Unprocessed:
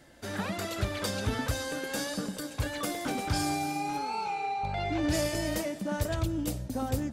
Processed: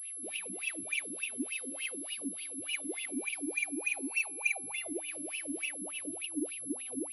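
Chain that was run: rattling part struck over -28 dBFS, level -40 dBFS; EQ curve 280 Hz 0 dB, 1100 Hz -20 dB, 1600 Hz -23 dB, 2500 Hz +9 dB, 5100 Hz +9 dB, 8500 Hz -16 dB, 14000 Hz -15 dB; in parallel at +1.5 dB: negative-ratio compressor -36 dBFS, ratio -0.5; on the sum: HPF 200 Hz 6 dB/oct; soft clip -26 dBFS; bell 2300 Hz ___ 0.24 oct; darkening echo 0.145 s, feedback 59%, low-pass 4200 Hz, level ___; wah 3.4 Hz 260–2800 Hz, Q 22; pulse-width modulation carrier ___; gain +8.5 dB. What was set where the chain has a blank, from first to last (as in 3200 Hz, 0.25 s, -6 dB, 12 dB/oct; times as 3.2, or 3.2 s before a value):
+5.5 dB, -17 dB, 11000 Hz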